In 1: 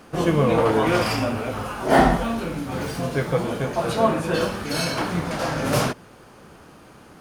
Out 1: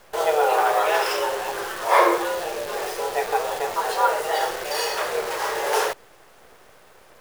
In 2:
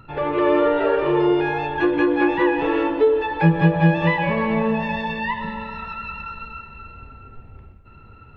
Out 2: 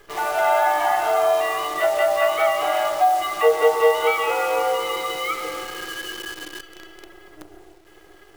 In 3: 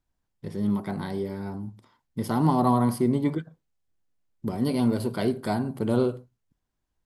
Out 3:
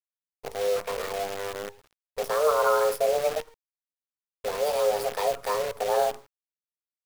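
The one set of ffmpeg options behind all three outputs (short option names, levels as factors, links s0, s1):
-af "afreqshift=300,acrusher=bits=6:dc=4:mix=0:aa=0.000001,volume=0.891"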